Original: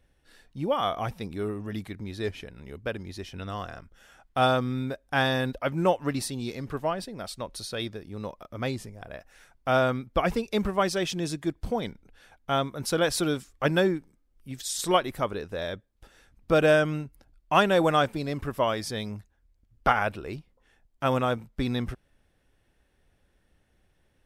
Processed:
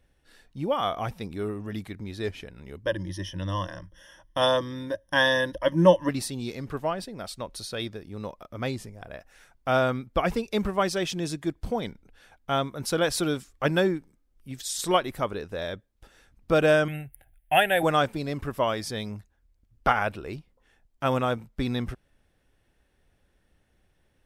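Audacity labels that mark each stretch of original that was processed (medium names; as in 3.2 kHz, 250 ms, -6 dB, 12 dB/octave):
2.840000	6.090000	rippled EQ curve crests per octave 1.2, crest to trough 17 dB
16.880000	17.830000	FFT filter 140 Hz 0 dB, 210 Hz -12 dB, 500 Hz -5 dB, 760 Hz +6 dB, 1.1 kHz -20 dB, 1.7 kHz +8 dB, 3.3 kHz +3 dB, 5.4 kHz -24 dB, 10 kHz +14 dB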